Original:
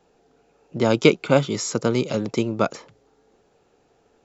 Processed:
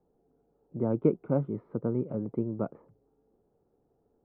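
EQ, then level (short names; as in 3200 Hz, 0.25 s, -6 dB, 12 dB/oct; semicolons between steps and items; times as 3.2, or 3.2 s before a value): ladder low-pass 1000 Hz, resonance 25%; air absorption 250 m; bell 690 Hz -9 dB 1.4 oct; 0.0 dB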